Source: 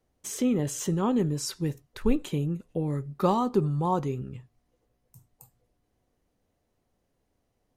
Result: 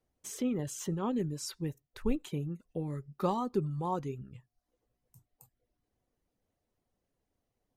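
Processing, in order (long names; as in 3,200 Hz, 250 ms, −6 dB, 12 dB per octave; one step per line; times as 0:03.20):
reverb reduction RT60 0.51 s
level −6.5 dB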